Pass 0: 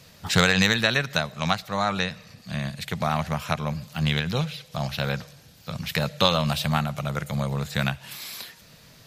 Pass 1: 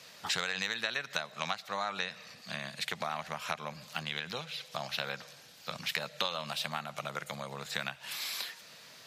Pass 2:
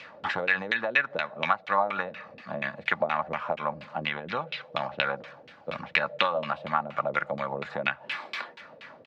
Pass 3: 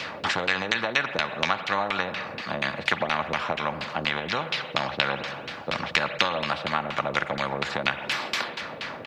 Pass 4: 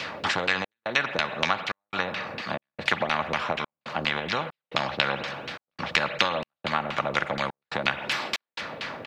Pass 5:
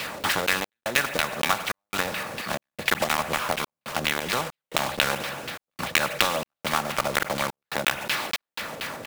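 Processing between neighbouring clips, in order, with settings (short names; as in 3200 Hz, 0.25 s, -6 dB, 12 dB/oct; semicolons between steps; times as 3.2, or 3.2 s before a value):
compressor 6:1, threshold -30 dBFS, peak gain reduction 15.5 dB; weighting filter A
comb 3.5 ms, depth 34%; LFO low-pass saw down 4.2 Hz 380–2800 Hz; gain +6.5 dB
spring tank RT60 1.2 s, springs 43 ms, chirp 25 ms, DRR 19 dB; spectral compressor 2:1; gain +4 dB
step gate "xxx.xxxx." 70 bpm -60 dB
block floating point 3-bit; gain +1 dB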